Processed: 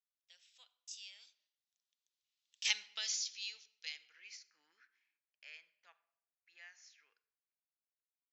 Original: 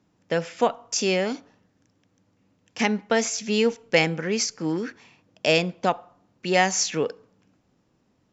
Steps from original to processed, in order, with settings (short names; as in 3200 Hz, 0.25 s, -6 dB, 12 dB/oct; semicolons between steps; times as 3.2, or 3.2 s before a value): Doppler pass-by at 2.77, 18 m/s, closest 2.6 m; band-pass sweep 3800 Hz -> 1800 Hz, 3.87–4.51; differentiator; shoebox room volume 3100 m³, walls furnished, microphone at 0.68 m; gain +10 dB